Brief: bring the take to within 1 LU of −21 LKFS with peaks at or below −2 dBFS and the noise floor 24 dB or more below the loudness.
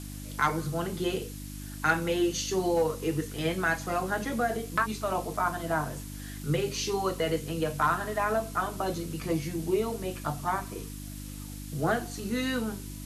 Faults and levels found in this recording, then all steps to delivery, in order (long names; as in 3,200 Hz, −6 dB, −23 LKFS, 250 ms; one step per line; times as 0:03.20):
mains hum 50 Hz; hum harmonics up to 300 Hz; level of the hum −38 dBFS; background noise floor −40 dBFS; target noise floor −54 dBFS; integrated loudness −30.0 LKFS; sample peak −12.5 dBFS; target loudness −21.0 LKFS
→ hum removal 50 Hz, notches 6
broadband denoise 14 dB, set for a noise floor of −40 dBFS
level +9 dB